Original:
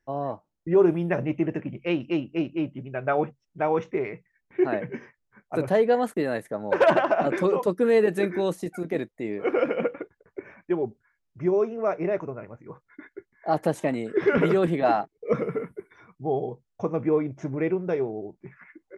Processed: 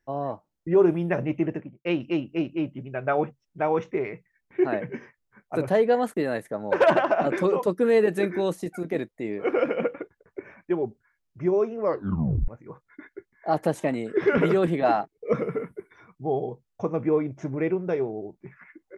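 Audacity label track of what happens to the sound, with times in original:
1.450000	1.850000	studio fade out
11.800000	11.800000	tape stop 0.68 s

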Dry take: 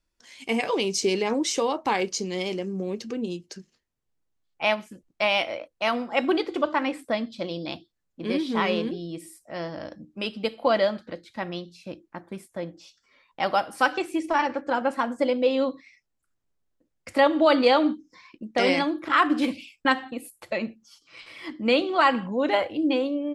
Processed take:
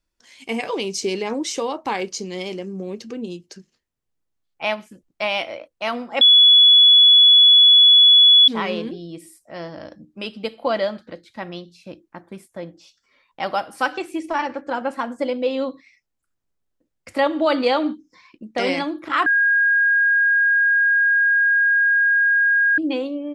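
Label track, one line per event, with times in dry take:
6.210000	8.480000	bleep 3.4 kHz -7.5 dBFS
19.260000	22.780000	bleep 1.63 kHz -13.5 dBFS

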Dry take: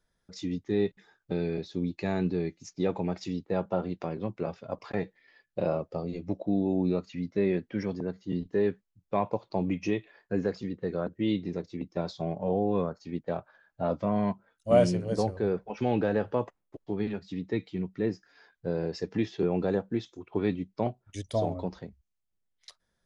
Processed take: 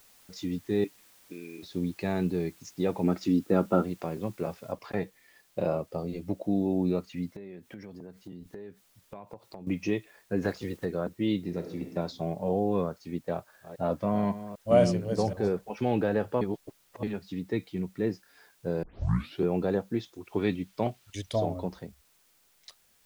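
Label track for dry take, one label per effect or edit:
0.840000	1.630000	two resonant band-passes 840 Hz, apart 3 oct
3.020000	3.820000	small resonant body resonances 270/1300 Hz, height 10 dB -> 13 dB, ringing for 20 ms
4.720000	4.720000	noise floor step -59 dB -66 dB
7.360000	9.670000	compression 8:1, threshold -40 dBFS
10.410000	10.840000	spectral peaks clipped ceiling under each frame's peak by 13 dB
11.470000	11.920000	reverb throw, RT60 0.92 s, DRR 5.5 dB
13.260000	15.520000	chunks repeated in reverse 259 ms, level -13 dB
16.410000	17.030000	reverse
18.830000	18.830000	tape start 0.60 s
20.250000	21.360000	peaking EQ 3.1 kHz +5.5 dB 1.7 oct

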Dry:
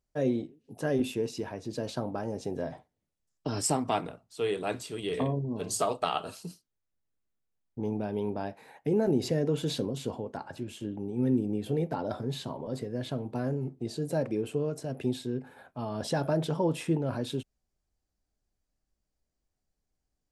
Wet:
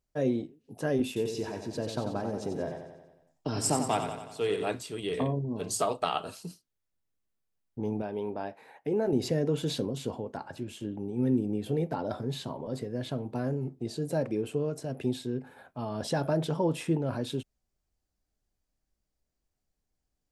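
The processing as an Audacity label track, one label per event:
1.070000	4.700000	feedback delay 91 ms, feedback 57%, level -7.5 dB
8.020000	9.130000	tone controls bass -8 dB, treble -6 dB

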